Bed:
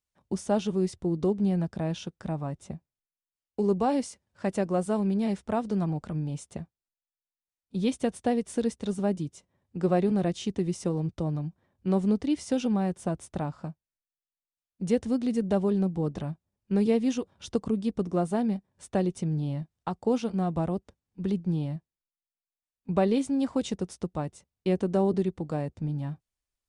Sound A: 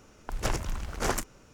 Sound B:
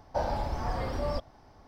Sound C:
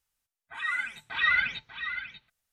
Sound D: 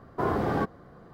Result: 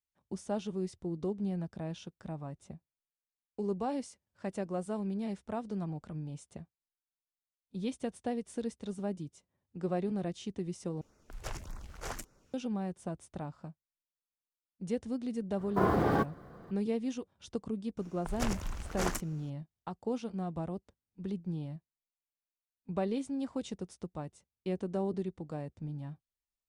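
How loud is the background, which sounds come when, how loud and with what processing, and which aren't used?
bed -9 dB
11.01 s: replace with A -11 dB + LFO notch sine 1.7 Hz 230–3200 Hz
15.58 s: add D -1 dB + block-companded coder 7-bit
17.97 s: add A -5 dB
not used: B, C

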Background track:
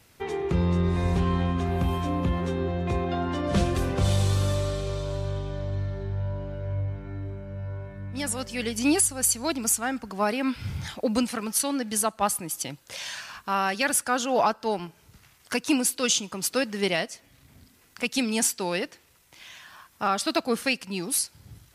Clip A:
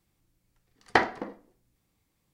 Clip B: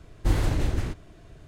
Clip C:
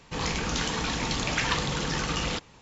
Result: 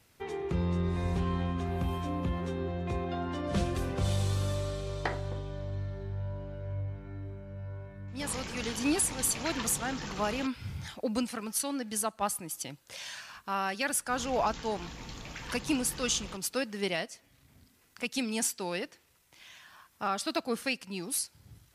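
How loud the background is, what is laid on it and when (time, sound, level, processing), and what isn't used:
background track -6.5 dB
4.10 s: add A -12 dB
8.08 s: add C -11 dB
13.98 s: add C -16.5 dB + bass shelf 120 Hz +7 dB
not used: B

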